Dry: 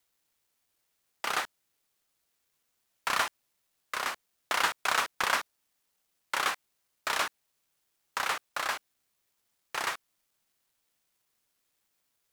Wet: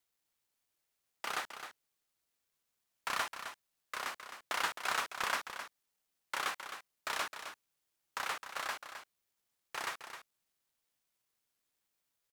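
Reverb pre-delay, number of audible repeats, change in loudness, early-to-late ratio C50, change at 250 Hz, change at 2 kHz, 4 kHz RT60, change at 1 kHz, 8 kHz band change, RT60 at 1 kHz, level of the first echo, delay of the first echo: no reverb, 1, -7.5 dB, no reverb, -6.5 dB, -6.5 dB, no reverb, -6.5 dB, -6.5 dB, no reverb, -9.5 dB, 262 ms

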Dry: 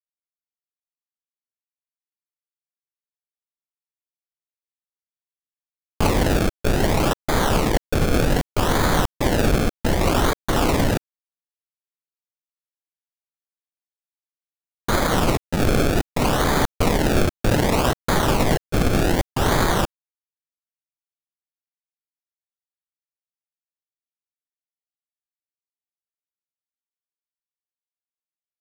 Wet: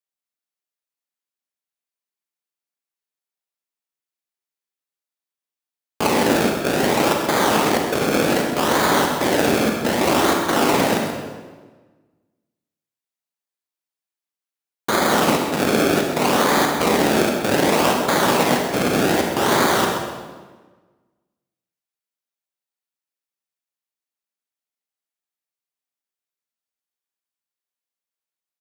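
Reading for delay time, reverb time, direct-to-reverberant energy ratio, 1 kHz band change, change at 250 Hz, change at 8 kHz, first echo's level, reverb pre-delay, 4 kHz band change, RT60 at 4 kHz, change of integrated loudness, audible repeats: 131 ms, 1.4 s, 1.0 dB, +4.5 dB, +2.5 dB, +4.0 dB, -10.0 dB, 34 ms, +4.0 dB, 1.1 s, +2.5 dB, 1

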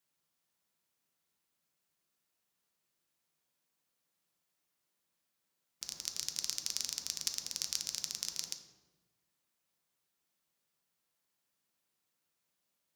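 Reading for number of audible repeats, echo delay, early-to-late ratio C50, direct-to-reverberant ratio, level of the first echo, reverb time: no echo, no echo, 8.0 dB, 5.0 dB, no echo, 1.2 s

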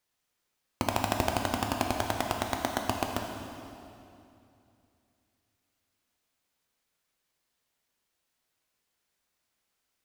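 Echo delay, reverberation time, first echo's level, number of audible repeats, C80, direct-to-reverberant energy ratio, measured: no echo, 2.7 s, no echo, no echo, 4.5 dB, 1.5 dB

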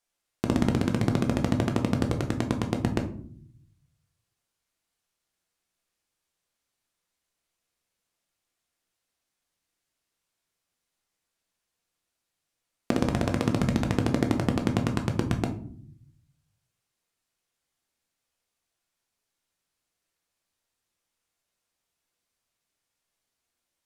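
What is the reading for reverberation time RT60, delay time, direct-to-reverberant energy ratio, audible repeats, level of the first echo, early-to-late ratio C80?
0.55 s, no echo, 3.5 dB, no echo, no echo, 16.0 dB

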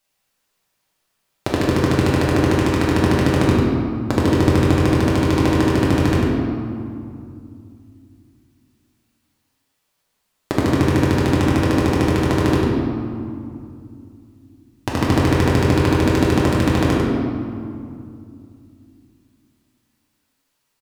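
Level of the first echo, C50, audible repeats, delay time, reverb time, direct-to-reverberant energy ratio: -5.0 dB, -1.5 dB, 1, 97 ms, 2.5 s, -5.5 dB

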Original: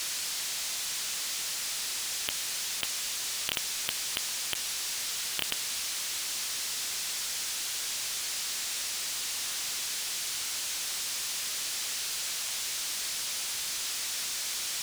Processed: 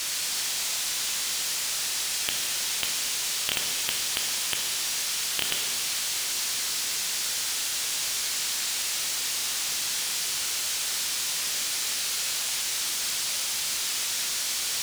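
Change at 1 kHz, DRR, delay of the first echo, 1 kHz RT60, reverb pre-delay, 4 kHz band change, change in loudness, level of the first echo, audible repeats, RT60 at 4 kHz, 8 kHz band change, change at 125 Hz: +5.0 dB, 2.0 dB, no echo, 1.8 s, 8 ms, +5.0 dB, +5.0 dB, no echo, no echo, 1.7 s, +5.0 dB, +5.0 dB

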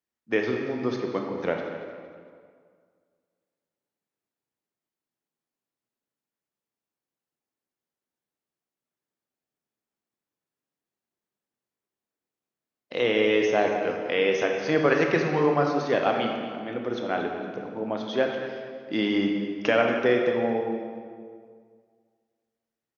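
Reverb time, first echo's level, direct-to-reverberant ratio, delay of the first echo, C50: 2.0 s, -14.0 dB, 1.5 dB, 231 ms, 3.0 dB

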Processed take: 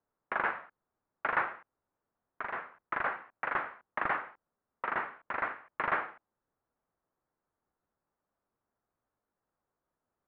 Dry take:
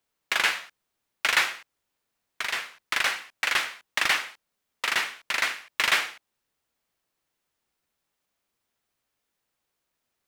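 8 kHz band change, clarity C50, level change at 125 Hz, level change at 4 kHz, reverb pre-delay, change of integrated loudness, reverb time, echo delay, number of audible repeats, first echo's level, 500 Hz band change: under -40 dB, no reverb, no reading, -29.0 dB, no reverb, -9.0 dB, no reverb, no echo, no echo, no echo, 0.0 dB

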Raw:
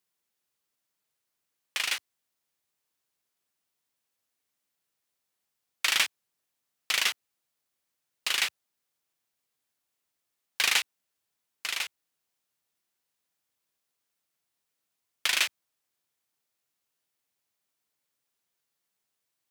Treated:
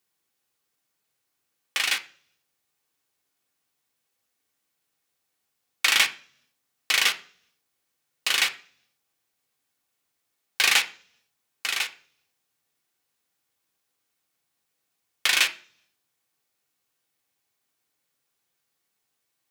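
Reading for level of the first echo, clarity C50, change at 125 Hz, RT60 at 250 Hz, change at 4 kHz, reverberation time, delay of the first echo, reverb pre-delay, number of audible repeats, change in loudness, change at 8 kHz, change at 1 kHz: no echo, 16.0 dB, no reading, 0.75 s, +4.5 dB, 0.50 s, no echo, 3 ms, no echo, +5.0 dB, +4.0 dB, +5.0 dB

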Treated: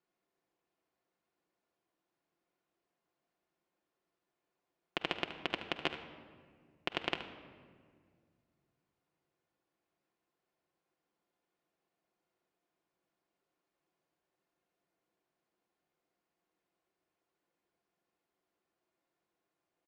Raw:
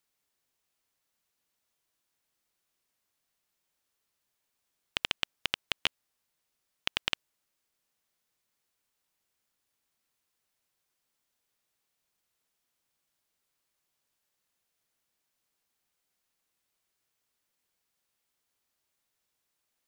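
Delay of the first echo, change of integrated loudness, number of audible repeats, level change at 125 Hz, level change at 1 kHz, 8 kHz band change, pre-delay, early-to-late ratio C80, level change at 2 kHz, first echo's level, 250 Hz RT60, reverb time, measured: 74 ms, -5.5 dB, 1, +1.0 dB, +1.5 dB, -15.0 dB, 3 ms, 11.0 dB, -4.5 dB, -11.5 dB, 2.7 s, 1.9 s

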